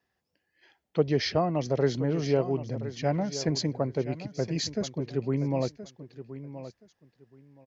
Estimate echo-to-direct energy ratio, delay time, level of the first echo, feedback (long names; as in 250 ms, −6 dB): −13.0 dB, 1,023 ms, −13.0 dB, 19%